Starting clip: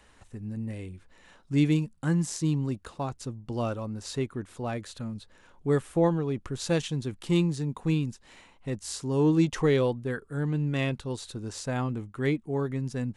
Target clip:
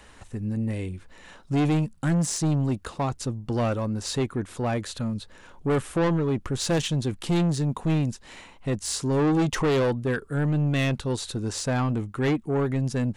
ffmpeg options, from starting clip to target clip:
-af "asoftclip=type=tanh:threshold=0.0447,volume=2.51"

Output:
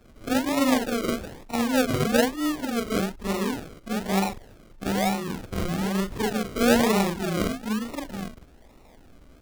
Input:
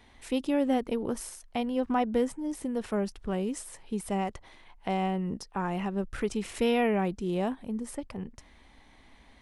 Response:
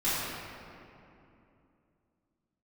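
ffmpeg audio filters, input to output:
-af "afftfilt=real='re':imag='-im':win_size=4096:overlap=0.75,acrusher=samples=39:mix=1:aa=0.000001:lfo=1:lforange=23.4:lforate=1.1,volume=2.82"

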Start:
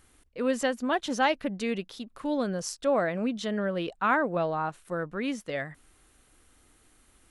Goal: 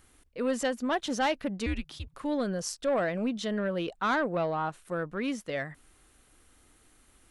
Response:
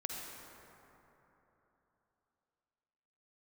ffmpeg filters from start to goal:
-filter_complex "[0:a]asettb=1/sr,asplit=3[s0][s1][s2];[s0]atrim=end=1.664[s3];[s1]atrim=start=1.66:end=2.14,asetpts=PTS-STARTPTS,afade=t=in:d=0.004:c=qsin,afade=t=out:st=0.476:d=0.004:c=qsin,afreqshift=-160[s4];[s2]atrim=start=2.136[s5];[s3][s4]acrossfade=d=0.004:c1=hsin:c2=qsin[s6];[s6][s5]acrossfade=d=0.004:c1=qsin:c2=hsin,acrossover=split=4600[s7][s8];[s7]asoftclip=type=tanh:threshold=0.0944[s9];[s9][s8]amix=inputs=2:normalize=0"

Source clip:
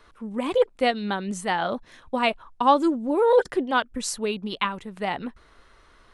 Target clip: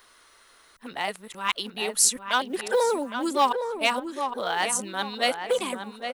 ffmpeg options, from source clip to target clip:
-filter_complex "[0:a]areverse,acontrast=68,aemphasis=mode=production:type=riaa,acrusher=bits=8:mode=log:mix=0:aa=0.000001,asplit=2[s0][s1];[s1]adelay=812,lowpass=f=2200:p=1,volume=0.447,asplit=2[s2][s3];[s3]adelay=812,lowpass=f=2200:p=1,volume=0.34,asplit=2[s4][s5];[s5]adelay=812,lowpass=f=2200:p=1,volume=0.34,asplit=2[s6][s7];[s7]adelay=812,lowpass=f=2200:p=1,volume=0.34[s8];[s2][s4][s6][s8]amix=inputs=4:normalize=0[s9];[s0][s9]amix=inputs=2:normalize=0,volume=0.398"

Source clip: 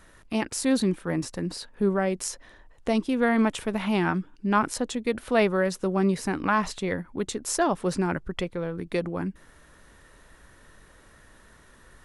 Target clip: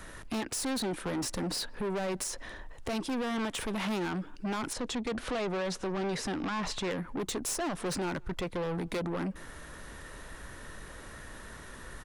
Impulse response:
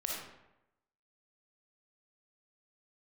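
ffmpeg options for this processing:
-filter_complex "[0:a]acrossover=split=280|1500[s0][s1][s2];[s0]acompressor=threshold=0.0178:ratio=4[s3];[s1]acompressor=threshold=0.0562:ratio=4[s4];[s2]acompressor=threshold=0.0224:ratio=4[s5];[s3][s4][s5]amix=inputs=3:normalize=0,alimiter=limit=0.0708:level=0:latency=1:release=207,asoftclip=type=tanh:threshold=0.0126,asettb=1/sr,asplit=3[s6][s7][s8];[s6]atrim=end=4.734[s9];[s7]atrim=start=4.73:end=6.91,asetpts=PTS-STARTPTS,afade=t=in:d=0.004:c=qsin,afade=t=out:st=2.176:d=0.004:c=qsin,lowpass=6800[s10];[s8]atrim=start=6.906[s11];[s9][s10]acrossfade=d=0.004:c1=hsin:c2=qsin[s12];[s12][s11]acrossfade=d=0.004:c1=qsin:c2=hsin,asplit=2[s13][s14];[s14]adelay=170,highpass=300,lowpass=3400,asoftclip=type=hard:threshold=0.0119,volume=0.0447[s15];[s13][s15]amix=inputs=2:normalize=0,volume=2.51"

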